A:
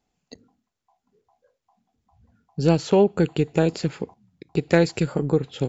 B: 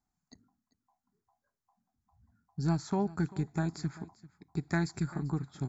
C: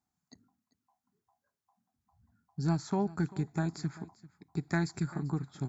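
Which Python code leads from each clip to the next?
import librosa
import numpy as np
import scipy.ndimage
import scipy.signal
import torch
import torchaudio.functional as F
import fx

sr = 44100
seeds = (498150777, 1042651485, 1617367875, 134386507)

y1 = fx.fixed_phaser(x, sr, hz=1200.0, stages=4)
y1 = y1 + 10.0 ** (-19.5 / 20.0) * np.pad(y1, (int(392 * sr / 1000.0), 0))[:len(y1)]
y1 = y1 * librosa.db_to_amplitude(-7.0)
y2 = scipy.signal.sosfilt(scipy.signal.butter(2, 74.0, 'highpass', fs=sr, output='sos'), y1)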